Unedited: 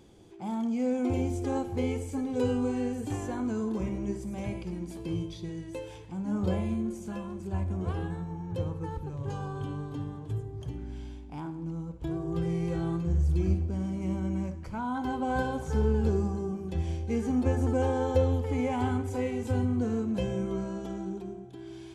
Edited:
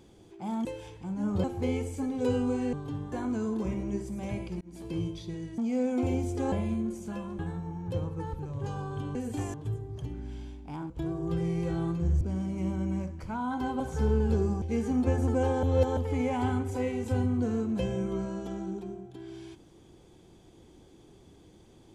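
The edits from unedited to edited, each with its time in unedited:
0:00.65–0:01.59: swap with 0:05.73–0:06.52
0:02.88–0:03.27: swap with 0:09.79–0:10.18
0:04.76–0:05.01: fade in
0:07.39–0:08.03: remove
0:11.54–0:11.95: remove
0:13.26–0:13.65: remove
0:15.24–0:15.54: remove
0:16.36–0:17.01: remove
0:18.02–0:18.36: reverse

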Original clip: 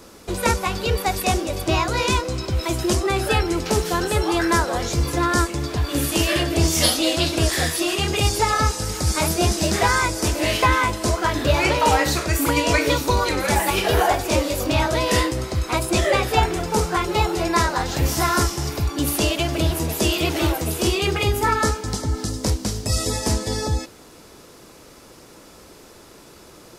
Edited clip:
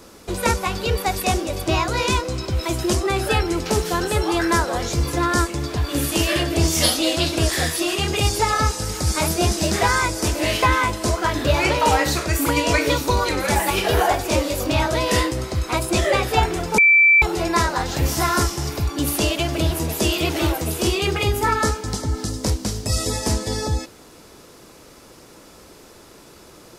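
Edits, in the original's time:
0:16.78–0:17.22: beep over 2,330 Hz −9.5 dBFS

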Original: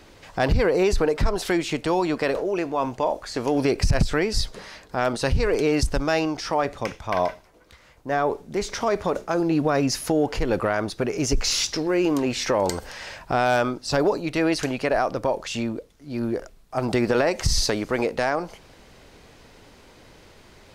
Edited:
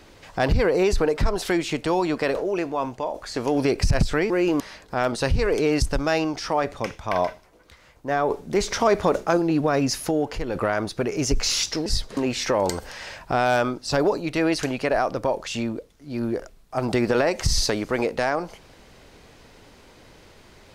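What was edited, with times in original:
0:02.63–0:03.14: fade out, to −6 dB
0:04.30–0:04.61: swap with 0:11.87–0:12.17
0:08.31–0:09.38: clip gain +4 dB
0:09.93–0:10.56: fade out, to −6 dB

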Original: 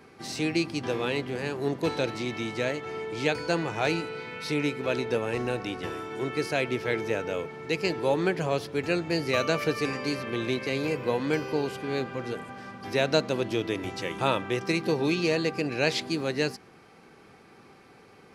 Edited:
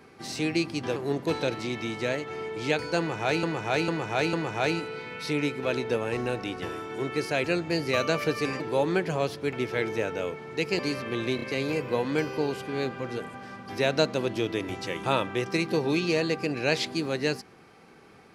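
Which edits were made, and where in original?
0:00.96–0:01.52: remove
0:03.54–0:03.99: repeat, 4 plays
0:06.65–0:07.91: swap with 0:08.84–0:10.00
0:10.57: stutter 0.03 s, 3 plays

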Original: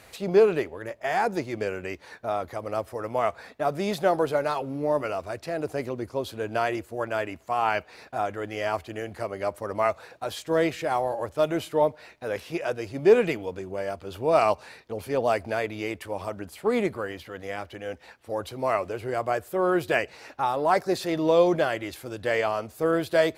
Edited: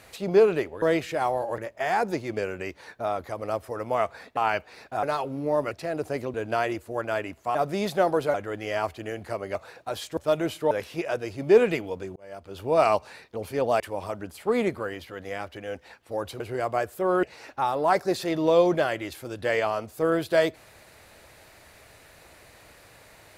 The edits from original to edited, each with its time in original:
0:03.61–0:04.40: swap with 0:07.58–0:08.24
0:05.08–0:05.35: remove
0:05.98–0:06.37: remove
0:09.45–0:09.90: remove
0:10.52–0:11.28: move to 0:00.82
0:11.82–0:12.27: remove
0:13.72–0:14.22: fade in
0:15.36–0:15.98: remove
0:18.58–0:18.94: remove
0:19.77–0:20.04: remove

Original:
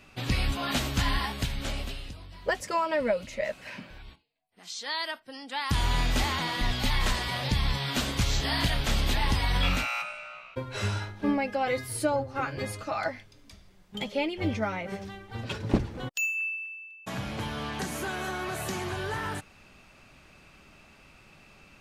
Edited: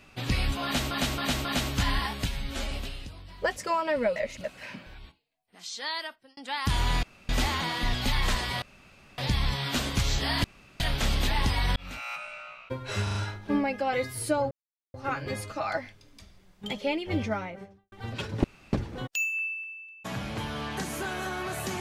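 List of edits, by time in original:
0:00.64–0:00.91: repeat, 4 plays
0:01.45–0:01.75: time-stretch 1.5×
0:03.20–0:03.48: reverse
0:04.78–0:05.41: fade out equal-power
0:06.07: splice in room tone 0.26 s
0:07.40: splice in room tone 0.56 s
0:08.66: splice in room tone 0.36 s
0:09.62–0:10.20: fade in
0:10.89: stutter 0.04 s, 4 plays
0:12.25: splice in silence 0.43 s
0:14.55–0:15.23: fade out and dull
0:15.75: splice in room tone 0.29 s

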